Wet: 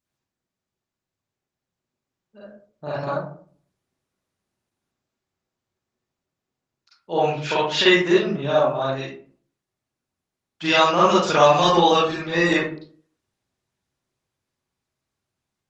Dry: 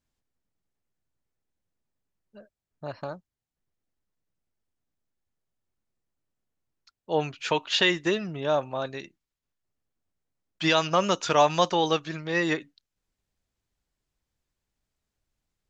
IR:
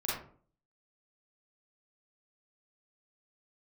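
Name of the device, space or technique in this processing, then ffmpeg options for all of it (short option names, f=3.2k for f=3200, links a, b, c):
far-field microphone of a smart speaker: -filter_complex "[1:a]atrim=start_sample=2205[a];[0:a][a]afir=irnorm=-1:irlink=0,highpass=110,dynaudnorm=f=920:g=7:m=12.5dB,volume=-1dB" -ar 48000 -c:a libopus -b:a 20k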